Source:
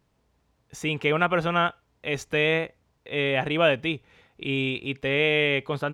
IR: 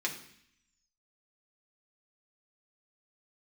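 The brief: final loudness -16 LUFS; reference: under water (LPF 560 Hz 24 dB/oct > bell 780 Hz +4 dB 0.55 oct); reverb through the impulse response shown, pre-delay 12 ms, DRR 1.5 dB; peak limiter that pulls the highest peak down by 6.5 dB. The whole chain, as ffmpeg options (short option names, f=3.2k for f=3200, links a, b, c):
-filter_complex "[0:a]alimiter=limit=-14dB:level=0:latency=1,asplit=2[a][b];[1:a]atrim=start_sample=2205,adelay=12[c];[b][c]afir=irnorm=-1:irlink=0,volume=-6.5dB[d];[a][d]amix=inputs=2:normalize=0,lowpass=f=560:w=0.5412,lowpass=f=560:w=1.3066,equalizer=f=780:t=o:w=0.55:g=4,volume=13dB"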